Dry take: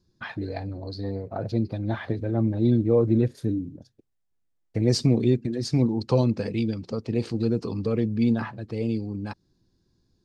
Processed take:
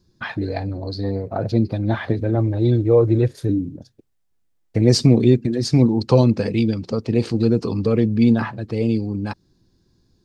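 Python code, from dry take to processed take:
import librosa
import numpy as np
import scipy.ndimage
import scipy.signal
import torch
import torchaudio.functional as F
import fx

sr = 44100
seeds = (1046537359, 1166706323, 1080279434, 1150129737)

y = fx.peak_eq(x, sr, hz=220.0, db=-12.5, octaves=0.47, at=(2.35, 3.49))
y = y * librosa.db_to_amplitude(7.0)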